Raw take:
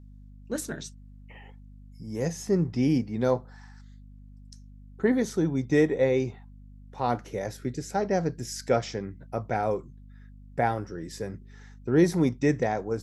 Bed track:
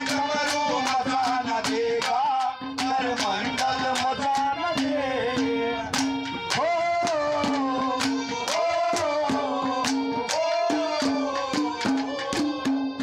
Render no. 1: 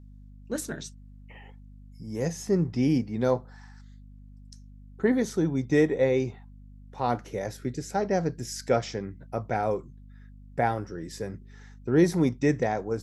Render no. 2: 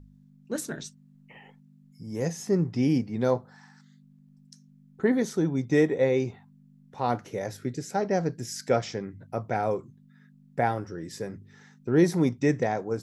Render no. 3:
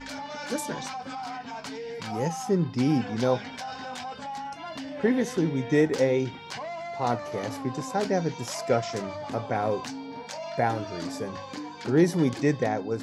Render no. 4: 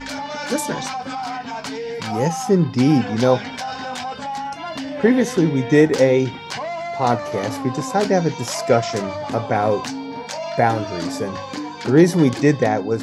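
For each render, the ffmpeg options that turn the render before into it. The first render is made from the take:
-af anull
-af "bandreject=f=50:t=h:w=4,bandreject=f=100:t=h:w=4"
-filter_complex "[1:a]volume=0.251[s0];[0:a][s0]amix=inputs=2:normalize=0"
-af "volume=2.66,alimiter=limit=0.794:level=0:latency=1"

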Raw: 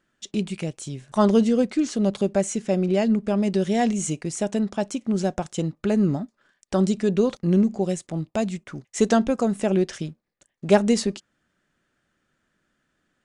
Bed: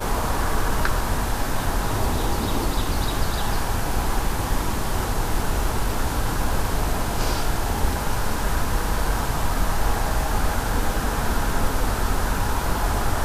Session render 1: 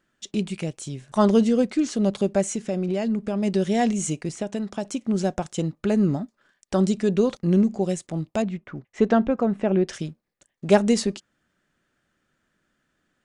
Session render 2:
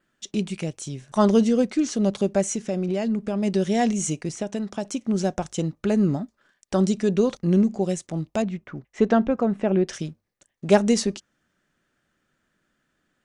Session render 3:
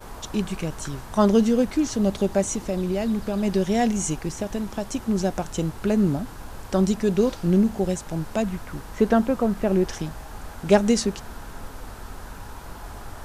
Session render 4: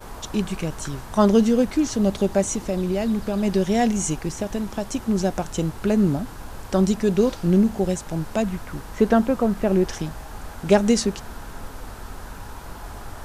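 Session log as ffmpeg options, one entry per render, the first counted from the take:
-filter_complex "[0:a]asettb=1/sr,asplit=3[s0][s1][s2];[s0]atrim=end=2.494[s3];[s1]atrim=start=2.49:end=3.43,asetpts=PTS-STARTPTS,afade=t=in:d=0.004:c=qsin,afade=t=out:st=0.936:d=0.004:c=qsin,acompressor=threshold=0.0794:ratio=2.5:attack=3.2:release=140:knee=1:detection=peak[s4];[s2]atrim=start=3.426[s5];[s3][s4]acrossfade=d=0.004:c1=hsin:c2=qsin[s6];[s6][s5]acrossfade=d=0.004:c1=qsin:c2=hsin,asettb=1/sr,asplit=3[s7][s8][s9];[s7]atrim=end=4.294[s10];[s8]atrim=start=4.29:end=4.85,asetpts=PTS-STARTPTS,afade=t=in:d=0.004:c=qsin,afade=t=out:st=0.556:d=0.004:c=qsin,acrossover=split=660|4700[s11][s12][s13];[s11]acompressor=threshold=0.0501:ratio=4[s14];[s12]acompressor=threshold=0.0178:ratio=4[s15];[s13]acompressor=threshold=0.00562:ratio=4[s16];[s14][s15][s16]amix=inputs=3:normalize=0[s17];[s9]atrim=start=4.846[s18];[s10][s17]acrossfade=d=0.004:c1=hsin:c2=qsin[s19];[s19][s18]acrossfade=d=0.004:c1=qsin:c2=hsin,asettb=1/sr,asplit=3[s20][s21][s22];[s20]atrim=end=8.424[s23];[s21]atrim=start=8.42:end=9.88,asetpts=PTS-STARTPTS,afade=t=in:d=0.004:c=qsin,afade=t=out:st=1.456:d=0.004:c=qsin,lowpass=2300[s24];[s22]atrim=start=9.876[s25];[s23][s24]acrossfade=d=0.004:c1=hsin:c2=qsin[s26];[s26][s25]acrossfade=d=0.004:c1=qsin:c2=hsin"
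-af "bandreject=f=50:t=h:w=6,bandreject=f=100:t=h:w=6,adynamicequalizer=threshold=0.00178:dfrequency=5900:dqfactor=6.3:tfrequency=5900:tqfactor=6.3:attack=5:release=100:ratio=0.375:range=3:mode=boostabove:tftype=bell"
-filter_complex "[1:a]volume=0.168[s0];[0:a][s0]amix=inputs=2:normalize=0"
-af "volume=1.19,alimiter=limit=0.708:level=0:latency=1"

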